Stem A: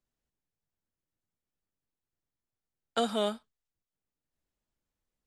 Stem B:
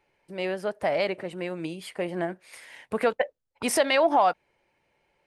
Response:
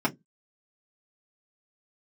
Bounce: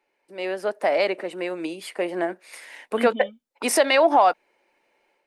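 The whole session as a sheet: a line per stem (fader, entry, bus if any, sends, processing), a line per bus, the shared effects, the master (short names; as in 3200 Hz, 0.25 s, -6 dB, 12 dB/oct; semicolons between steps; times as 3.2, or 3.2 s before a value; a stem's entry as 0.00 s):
+2.5 dB, 0.00 s, no send, vocal tract filter i; reverb removal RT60 1.7 s
-2.5 dB, 0.00 s, no send, HPF 250 Hz 24 dB/oct; notch 3200 Hz, Q 19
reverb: off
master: AGC gain up to 7 dB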